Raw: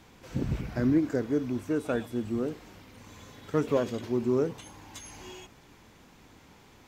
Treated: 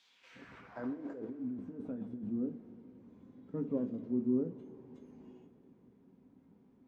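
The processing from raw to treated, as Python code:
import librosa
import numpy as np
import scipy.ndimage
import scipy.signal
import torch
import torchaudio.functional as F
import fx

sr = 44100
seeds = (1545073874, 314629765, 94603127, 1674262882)

y = fx.filter_sweep_bandpass(x, sr, from_hz=3900.0, to_hz=220.0, start_s=0.04, end_s=1.51, q=1.9)
y = fx.over_compress(y, sr, threshold_db=-39.0, ratio=-1.0, at=(0.83, 2.29), fade=0.02)
y = fx.rev_double_slope(y, sr, seeds[0], early_s=0.26, late_s=4.6, knee_db=-20, drr_db=5.5)
y = y * 10.0 ** (-3.5 / 20.0)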